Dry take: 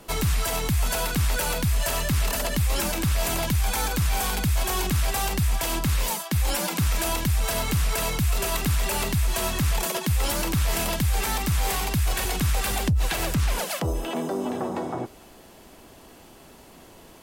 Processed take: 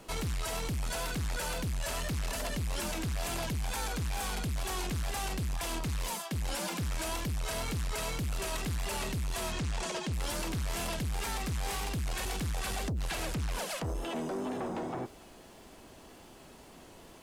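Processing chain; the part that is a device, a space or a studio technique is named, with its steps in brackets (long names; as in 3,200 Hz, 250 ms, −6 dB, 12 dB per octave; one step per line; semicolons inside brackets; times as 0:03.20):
0:09.52–0:10.13: low-pass filter 8,300 Hz 24 dB per octave
compact cassette (soft clipping −26.5 dBFS, distortion −10 dB; low-pass filter 11,000 Hz 12 dB per octave; tape wow and flutter; white noise bed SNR 40 dB)
level −4 dB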